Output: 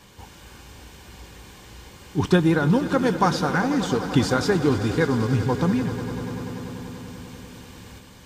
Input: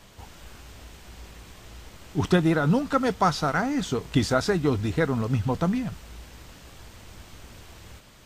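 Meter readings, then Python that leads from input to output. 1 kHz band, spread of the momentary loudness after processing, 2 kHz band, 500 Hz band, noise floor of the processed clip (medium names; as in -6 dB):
+1.5 dB, 18 LU, +3.0 dB, +3.0 dB, -47 dBFS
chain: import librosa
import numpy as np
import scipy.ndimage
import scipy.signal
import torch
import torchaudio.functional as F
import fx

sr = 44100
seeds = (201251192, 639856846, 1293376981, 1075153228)

y = fx.notch_comb(x, sr, f0_hz=660.0)
y = fx.echo_swell(y, sr, ms=97, loudest=5, wet_db=-16.5)
y = F.gain(torch.from_numpy(y), 3.0).numpy()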